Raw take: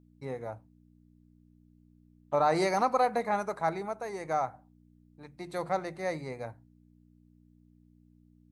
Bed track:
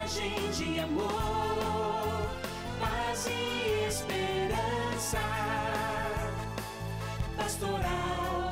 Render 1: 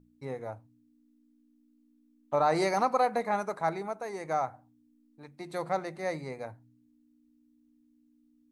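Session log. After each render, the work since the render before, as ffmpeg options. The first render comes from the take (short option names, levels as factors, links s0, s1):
-af "bandreject=f=60:t=h:w=4,bandreject=f=120:t=h:w=4,bandreject=f=180:t=h:w=4"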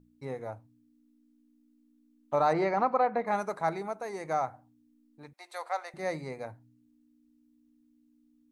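-filter_complex "[0:a]asplit=3[s0][s1][s2];[s0]afade=t=out:st=2.52:d=0.02[s3];[s1]lowpass=2300,afade=t=in:st=2.52:d=0.02,afade=t=out:st=3.26:d=0.02[s4];[s2]afade=t=in:st=3.26:d=0.02[s5];[s3][s4][s5]amix=inputs=3:normalize=0,asettb=1/sr,asplit=3[s6][s7][s8];[s6]atrim=end=5.334[s9];[s7]atrim=start=5.33:end=5.94,asetpts=PTS-STARTPTS,afade=t=in:d=0.004:c=qsin,afade=t=out:st=0.606:d=0.004:c=qsin,highpass=f=650:w=0.5412,highpass=f=650:w=1.3066[s10];[s8]atrim=start=5.936[s11];[s9][s10]acrossfade=d=0.004:c1=hsin:c2=qsin[s12];[s12][s11]acrossfade=d=0.004:c1=qsin:c2=hsin"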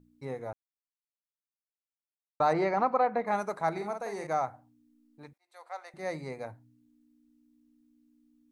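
-filter_complex "[0:a]asettb=1/sr,asplit=3[s0][s1][s2];[s0]atrim=end=3.714[s3];[s1]atrim=start=3.71:end=4.27,asetpts=PTS-STARTPTS,afade=t=in:d=0.004:c=qsin,afade=t=out:st=0.556:d=0.004:c=qsin,asplit=2[s4][s5];[s5]adelay=49,volume=0.562[s6];[s4][s6]amix=inputs=2:normalize=0,atrim=end_sample=24696[s7];[s2]atrim=start=4.266[s8];[s3][s7]acrossfade=d=0.004:c1=hsin:c2=qsin[s9];[s9][s8]acrossfade=d=0.004:c1=qsin:c2=hsin,asplit=4[s10][s11][s12][s13];[s10]atrim=end=0.53,asetpts=PTS-STARTPTS,afade=t=out:st=0.526:d=0.004:c=hsin[s14];[s11]atrim=start=0.53:end=2.4,asetpts=PTS-STARTPTS,volume=0[s15];[s12]atrim=start=2.4:end=5.38,asetpts=PTS-STARTPTS,afade=t=in:d=0.004:c=hsin,afade=t=out:st=2.976:d=0.004:c=hsin[s16];[s13]atrim=start=5.38,asetpts=PTS-STARTPTS,afade=t=in:d=0.9[s17];[s14][s15][s16][s17]concat=n=4:v=0:a=1"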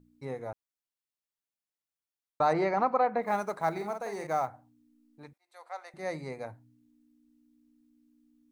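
-filter_complex "[0:a]asplit=3[s0][s1][s2];[s0]afade=t=out:st=3.21:d=0.02[s3];[s1]acrusher=bits=8:mode=log:mix=0:aa=0.000001,afade=t=in:st=3.21:d=0.02,afade=t=out:st=4.47:d=0.02[s4];[s2]afade=t=in:st=4.47:d=0.02[s5];[s3][s4][s5]amix=inputs=3:normalize=0"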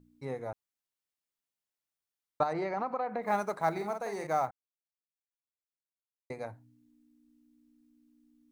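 -filter_complex "[0:a]asettb=1/sr,asplit=3[s0][s1][s2];[s0]atrim=end=2.434[s3];[s1]atrim=start=2.43:end=3.28,asetpts=PTS-STARTPTS,afade=t=in:d=0.004:c=qsin,afade=t=out:st=0.846:d=0.004:c=qsin,acompressor=threshold=0.0282:ratio=3:attack=3.2:release=140:knee=1:detection=peak[s4];[s2]atrim=start=3.276[s5];[s3][s4]acrossfade=d=0.004:c1=hsin:c2=qsin[s6];[s6][s5]acrossfade=d=0.004:c1=qsin:c2=hsin,asplit=3[s7][s8][s9];[s7]atrim=end=4.51,asetpts=PTS-STARTPTS,afade=t=out:st=4.506:d=0.004:c=hsin[s10];[s8]atrim=start=4.51:end=6.3,asetpts=PTS-STARTPTS,volume=0[s11];[s9]atrim=start=6.3,asetpts=PTS-STARTPTS,afade=t=in:d=0.004:c=hsin[s12];[s10][s11][s12]concat=n=3:v=0:a=1"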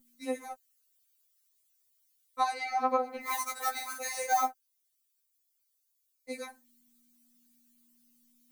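-af "crystalizer=i=8:c=0,afftfilt=real='re*3.46*eq(mod(b,12),0)':imag='im*3.46*eq(mod(b,12),0)':win_size=2048:overlap=0.75"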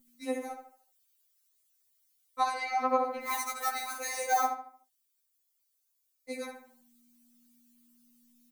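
-filter_complex "[0:a]asplit=2[s0][s1];[s1]adelay=75,lowpass=f=2700:p=1,volume=0.501,asplit=2[s2][s3];[s3]adelay=75,lowpass=f=2700:p=1,volume=0.4,asplit=2[s4][s5];[s5]adelay=75,lowpass=f=2700:p=1,volume=0.4,asplit=2[s6][s7];[s7]adelay=75,lowpass=f=2700:p=1,volume=0.4,asplit=2[s8][s9];[s9]adelay=75,lowpass=f=2700:p=1,volume=0.4[s10];[s0][s2][s4][s6][s8][s10]amix=inputs=6:normalize=0"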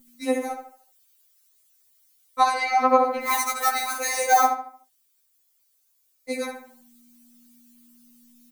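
-af "volume=2.99"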